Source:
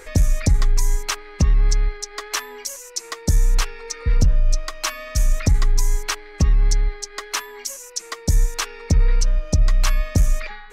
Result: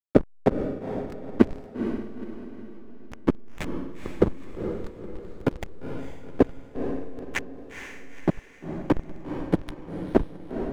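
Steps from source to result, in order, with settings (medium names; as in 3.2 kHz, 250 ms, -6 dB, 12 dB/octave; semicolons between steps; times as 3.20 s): rotating-head pitch shifter +10.5 st; LFO low-pass saw up 0.51 Hz 440–3700 Hz; in parallel at -8 dB: saturation -24.5 dBFS, distortion -7 dB; on the sum: resonant low shelf 210 Hz -12.5 dB, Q 3; whisper effect; hysteresis with a dead band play -12.5 dBFS; on a send: echo that smears into a reverb 471 ms, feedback 42%, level -7 dB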